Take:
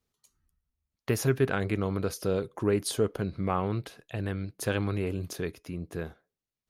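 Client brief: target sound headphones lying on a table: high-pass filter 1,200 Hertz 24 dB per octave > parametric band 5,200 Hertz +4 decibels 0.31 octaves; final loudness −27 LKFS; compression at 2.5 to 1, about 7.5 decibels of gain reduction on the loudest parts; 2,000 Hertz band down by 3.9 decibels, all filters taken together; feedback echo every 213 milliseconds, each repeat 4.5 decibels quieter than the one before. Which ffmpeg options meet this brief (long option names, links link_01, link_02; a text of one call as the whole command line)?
ffmpeg -i in.wav -af "equalizer=frequency=2000:width_type=o:gain=-5,acompressor=threshold=-32dB:ratio=2.5,highpass=frequency=1200:width=0.5412,highpass=frequency=1200:width=1.3066,equalizer=frequency=5200:width_type=o:width=0.31:gain=4,aecho=1:1:213|426|639|852|1065|1278|1491|1704|1917:0.596|0.357|0.214|0.129|0.0772|0.0463|0.0278|0.0167|0.01,volume=16dB" out.wav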